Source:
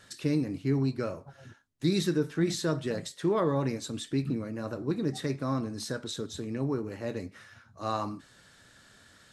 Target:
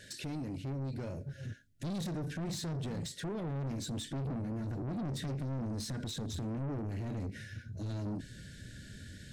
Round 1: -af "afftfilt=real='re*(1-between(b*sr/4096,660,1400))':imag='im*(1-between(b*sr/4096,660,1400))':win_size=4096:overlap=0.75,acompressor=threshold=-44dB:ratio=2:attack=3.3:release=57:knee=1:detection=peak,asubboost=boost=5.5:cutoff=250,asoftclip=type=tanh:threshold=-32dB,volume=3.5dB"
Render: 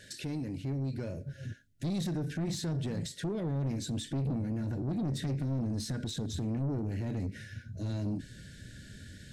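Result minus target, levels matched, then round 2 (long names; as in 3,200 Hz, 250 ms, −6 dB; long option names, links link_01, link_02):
soft clipping: distortion −5 dB
-af "afftfilt=real='re*(1-between(b*sr/4096,660,1400))':imag='im*(1-between(b*sr/4096,660,1400))':win_size=4096:overlap=0.75,acompressor=threshold=-44dB:ratio=2:attack=3.3:release=57:knee=1:detection=peak,asubboost=boost=5.5:cutoff=250,asoftclip=type=tanh:threshold=-38dB,volume=3.5dB"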